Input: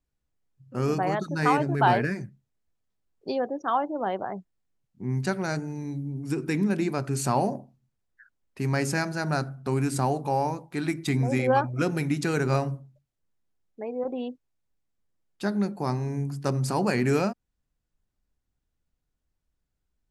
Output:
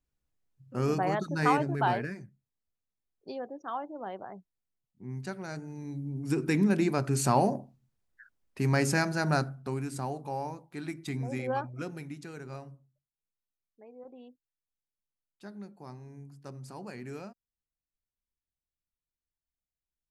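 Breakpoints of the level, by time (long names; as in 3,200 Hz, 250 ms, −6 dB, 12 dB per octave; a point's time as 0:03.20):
0:01.51 −2.5 dB
0:02.22 −10.5 dB
0:05.48 −10.5 dB
0:06.36 0 dB
0:09.37 0 dB
0:09.84 −9.5 dB
0:11.63 −9.5 dB
0:12.33 −18 dB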